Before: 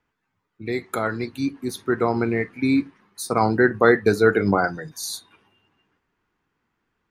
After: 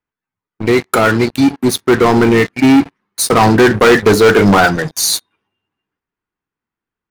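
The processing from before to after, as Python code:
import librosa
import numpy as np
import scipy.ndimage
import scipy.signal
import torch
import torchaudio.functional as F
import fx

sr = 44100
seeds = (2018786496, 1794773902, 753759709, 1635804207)

y = fx.leveller(x, sr, passes=5)
y = F.gain(torch.from_numpy(y), -1.5).numpy()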